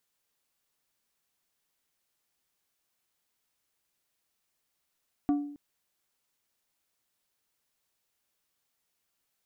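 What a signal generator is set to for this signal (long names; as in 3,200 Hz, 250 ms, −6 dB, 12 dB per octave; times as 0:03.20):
struck glass plate, length 0.27 s, lowest mode 289 Hz, decay 0.66 s, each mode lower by 11 dB, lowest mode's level −20.5 dB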